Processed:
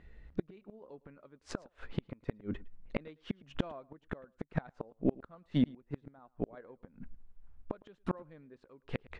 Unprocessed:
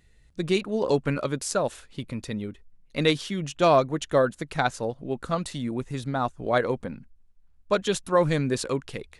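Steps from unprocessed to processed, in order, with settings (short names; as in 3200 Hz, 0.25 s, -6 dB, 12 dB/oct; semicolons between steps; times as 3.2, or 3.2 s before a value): LPF 1800 Hz 12 dB/oct; bell 120 Hz -8.5 dB 0.49 oct; flipped gate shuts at -25 dBFS, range -37 dB; random-step tremolo; on a send: echo 0.109 s -23 dB; on the sum: gain +11 dB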